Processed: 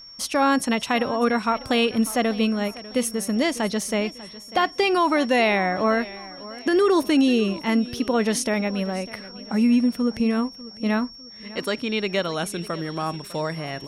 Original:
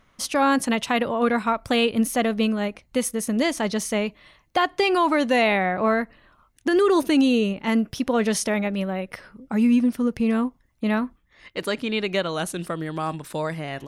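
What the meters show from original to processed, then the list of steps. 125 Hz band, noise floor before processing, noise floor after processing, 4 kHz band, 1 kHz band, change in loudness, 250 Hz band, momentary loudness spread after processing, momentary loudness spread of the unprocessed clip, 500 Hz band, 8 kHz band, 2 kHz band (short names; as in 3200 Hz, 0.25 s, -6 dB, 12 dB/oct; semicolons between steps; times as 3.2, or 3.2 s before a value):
0.0 dB, -63 dBFS, -42 dBFS, +1.0 dB, 0.0 dB, 0.0 dB, 0.0 dB, 10 LU, 10 LU, 0.0 dB, 0.0 dB, 0.0 dB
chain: whine 5500 Hz -41 dBFS; warbling echo 0.598 s, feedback 39%, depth 107 cents, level -18 dB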